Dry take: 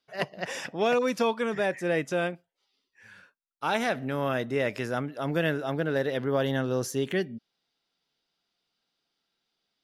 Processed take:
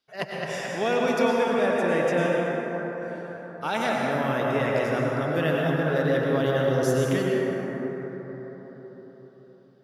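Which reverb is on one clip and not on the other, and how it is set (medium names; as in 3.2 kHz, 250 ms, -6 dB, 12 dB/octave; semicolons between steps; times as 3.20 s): plate-style reverb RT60 4.8 s, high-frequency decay 0.3×, pre-delay 85 ms, DRR -3 dB; trim -1 dB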